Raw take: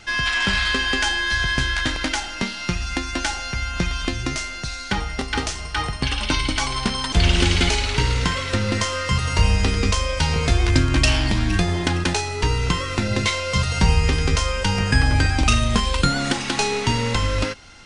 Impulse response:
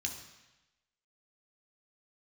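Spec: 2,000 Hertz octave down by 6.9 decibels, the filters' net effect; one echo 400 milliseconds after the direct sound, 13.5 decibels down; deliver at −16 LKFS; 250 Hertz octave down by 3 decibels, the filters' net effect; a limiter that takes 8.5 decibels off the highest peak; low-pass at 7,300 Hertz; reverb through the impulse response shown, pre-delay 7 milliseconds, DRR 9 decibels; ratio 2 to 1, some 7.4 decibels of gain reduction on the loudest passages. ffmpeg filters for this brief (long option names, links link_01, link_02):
-filter_complex "[0:a]lowpass=7300,equalizer=frequency=250:width_type=o:gain=-4,equalizer=frequency=2000:width_type=o:gain=-9,acompressor=threshold=-26dB:ratio=2,alimiter=limit=-18.5dB:level=0:latency=1,aecho=1:1:400:0.211,asplit=2[link_01][link_02];[1:a]atrim=start_sample=2205,adelay=7[link_03];[link_02][link_03]afir=irnorm=-1:irlink=0,volume=-10dB[link_04];[link_01][link_04]amix=inputs=2:normalize=0,volume=12dB"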